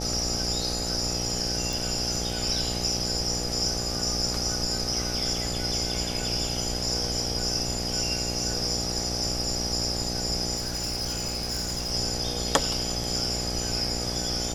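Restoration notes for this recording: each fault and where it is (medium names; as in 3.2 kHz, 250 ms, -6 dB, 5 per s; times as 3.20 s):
buzz 60 Hz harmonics 14 -33 dBFS
1.73 s: pop
10.56–11.92 s: clipped -26 dBFS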